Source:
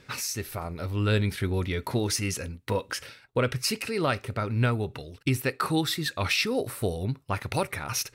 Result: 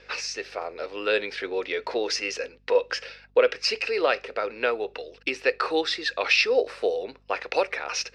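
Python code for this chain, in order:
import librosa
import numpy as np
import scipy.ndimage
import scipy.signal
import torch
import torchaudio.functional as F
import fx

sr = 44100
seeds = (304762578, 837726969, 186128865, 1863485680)

y = fx.cabinet(x, sr, low_hz=360.0, low_slope=24, high_hz=5700.0, hz=(490.0, 710.0, 1700.0, 2600.0, 5000.0), db=(10, 4, 5, 7, 6))
y = fx.add_hum(y, sr, base_hz=50, snr_db=34)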